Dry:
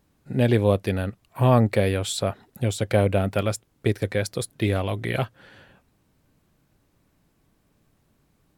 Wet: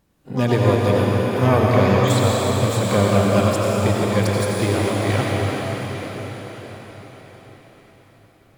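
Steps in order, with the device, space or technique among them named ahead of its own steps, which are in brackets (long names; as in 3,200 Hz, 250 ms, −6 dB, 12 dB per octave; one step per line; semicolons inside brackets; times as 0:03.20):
0:01.68–0:02.10: Butterworth low-pass 3,900 Hz 72 dB per octave
shimmer-style reverb (pitch-shifted copies added +12 semitones −9 dB; convolution reverb RT60 5.7 s, pre-delay 77 ms, DRR −4 dB)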